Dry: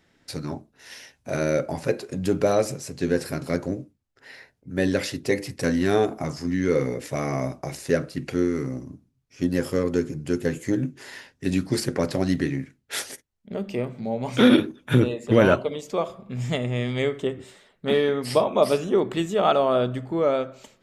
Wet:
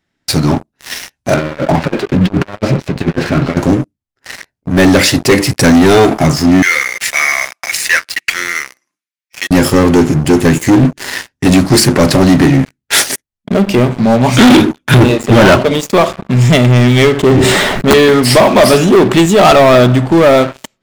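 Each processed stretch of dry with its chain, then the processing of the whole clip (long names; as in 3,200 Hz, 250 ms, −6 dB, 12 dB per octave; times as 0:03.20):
0:01.34–0:03.57: low-pass filter 3,400 Hz 24 dB per octave + compressor whose output falls as the input rises −28 dBFS, ratio −0.5 + flanger 2 Hz, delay 3.1 ms, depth 8 ms, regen −56%
0:06.62–0:09.51: high-pass with resonance 2,000 Hz, resonance Q 2 + comb filter 5.8 ms, depth 35%
0:17.12–0:17.94: high-shelf EQ 2,600 Hz −8.5 dB + wrap-around overflow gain 13 dB + level that may fall only so fast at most 30 dB per second
whole clip: parametric band 480 Hz −7 dB 0.39 octaves; leveller curve on the samples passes 5; level +4 dB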